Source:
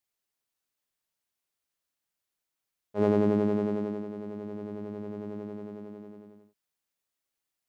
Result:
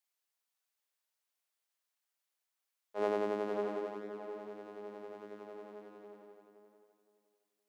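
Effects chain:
high-pass filter 570 Hz 12 dB per octave
tape delay 517 ms, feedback 26%, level −6 dB, low-pass 1,800 Hz
level −1.5 dB

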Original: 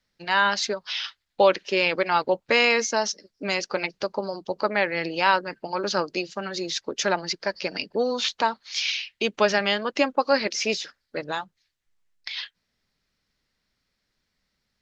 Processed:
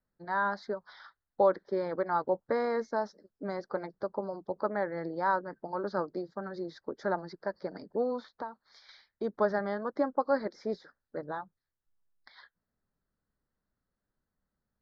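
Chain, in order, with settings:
0:08.19–0:08.89: downward compressor 6 to 1, threshold −28 dBFS, peak gain reduction 11 dB
Butterworth band-reject 2,700 Hz, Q 0.94
high-frequency loss of the air 440 metres
level −5 dB

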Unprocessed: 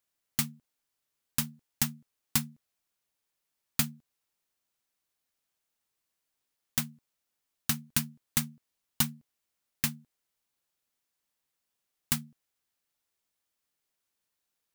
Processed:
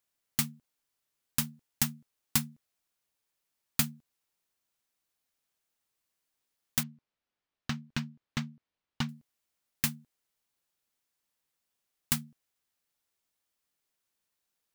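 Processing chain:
0:06.83–0:09.09: high-frequency loss of the air 190 metres

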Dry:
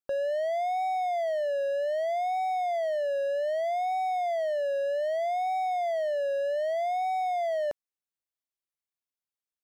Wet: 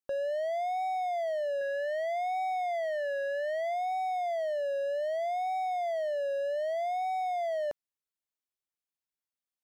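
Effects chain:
0:01.61–0:03.74: graphic EQ with 15 bands 160 Hz +10 dB, 400 Hz −6 dB, 1,600 Hz +9 dB
level −3 dB

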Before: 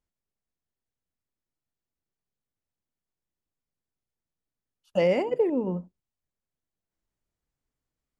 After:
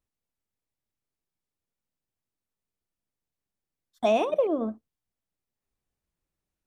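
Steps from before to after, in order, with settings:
speed change +23%

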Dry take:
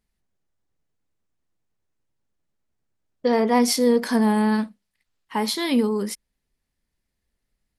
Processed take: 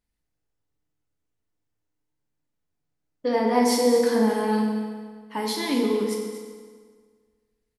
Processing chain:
single-tap delay 237 ms −12.5 dB
feedback delay network reverb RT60 1.7 s, low-frequency decay 1×, high-frequency decay 0.8×, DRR −1 dB
level −6 dB

